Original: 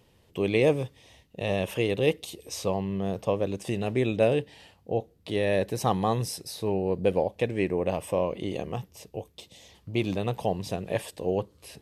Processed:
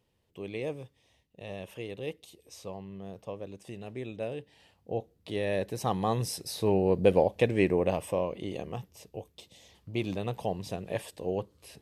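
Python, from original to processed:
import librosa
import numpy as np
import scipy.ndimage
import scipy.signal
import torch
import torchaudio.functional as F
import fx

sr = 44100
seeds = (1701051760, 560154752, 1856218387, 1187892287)

y = fx.gain(x, sr, db=fx.line((4.37, -13.0), (4.9, -5.0), (5.83, -5.0), (6.66, 2.0), (7.69, 2.0), (8.3, -4.5)))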